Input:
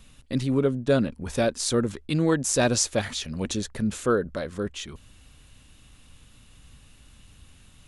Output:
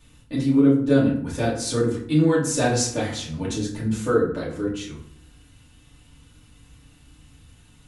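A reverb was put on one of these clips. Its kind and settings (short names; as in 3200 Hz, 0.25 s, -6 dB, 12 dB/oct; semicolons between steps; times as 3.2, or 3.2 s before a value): FDN reverb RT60 0.6 s, low-frequency decay 1.4×, high-frequency decay 0.6×, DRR -7 dB; gain -7 dB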